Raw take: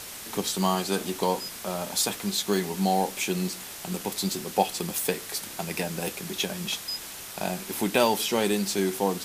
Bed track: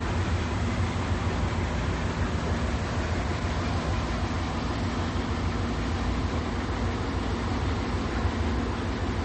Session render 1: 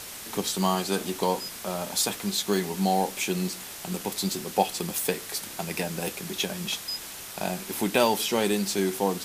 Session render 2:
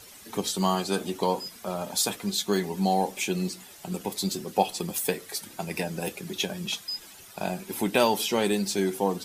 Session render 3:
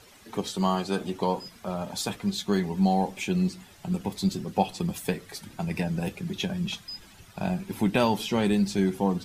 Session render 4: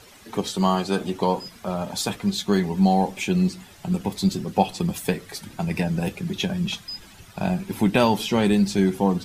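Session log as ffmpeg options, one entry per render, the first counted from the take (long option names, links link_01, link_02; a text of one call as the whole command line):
ffmpeg -i in.wav -af anull out.wav
ffmpeg -i in.wav -af "afftdn=noise_reduction=12:noise_floor=-40" out.wav
ffmpeg -i in.wav -af "lowpass=frequency=3000:poles=1,asubboost=boost=4:cutoff=190" out.wav
ffmpeg -i in.wav -af "volume=4.5dB" out.wav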